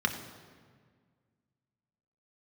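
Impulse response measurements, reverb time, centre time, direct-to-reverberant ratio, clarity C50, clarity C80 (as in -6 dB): 1.7 s, 22 ms, 3.5 dB, 9.0 dB, 10.0 dB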